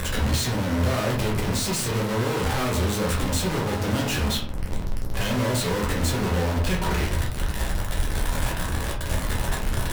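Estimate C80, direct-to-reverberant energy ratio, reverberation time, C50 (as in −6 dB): 10.0 dB, −3.0 dB, 0.55 s, 6.0 dB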